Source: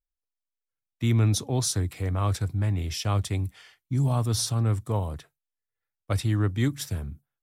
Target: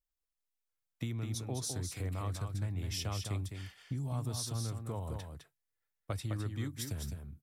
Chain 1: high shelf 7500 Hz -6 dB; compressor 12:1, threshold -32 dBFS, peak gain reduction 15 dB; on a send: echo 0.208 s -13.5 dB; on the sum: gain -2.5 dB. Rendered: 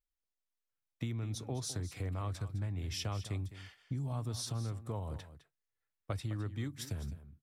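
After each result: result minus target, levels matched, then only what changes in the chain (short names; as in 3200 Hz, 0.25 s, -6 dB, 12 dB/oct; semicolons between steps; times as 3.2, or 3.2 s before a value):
echo-to-direct -7.5 dB; 8000 Hz band -2.5 dB
change: echo 0.208 s -6 dB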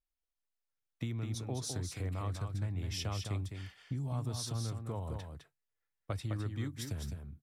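8000 Hz band -2.5 dB
change: high shelf 7500 Hz +3.5 dB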